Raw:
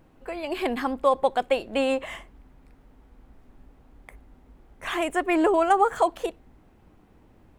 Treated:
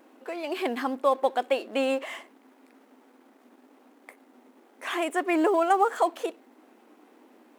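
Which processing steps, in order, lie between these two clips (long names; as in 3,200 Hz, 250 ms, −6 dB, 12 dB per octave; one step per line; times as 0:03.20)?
mu-law and A-law mismatch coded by mu
linear-phase brick-wall high-pass 220 Hz
tape wow and flutter 19 cents
level −2.5 dB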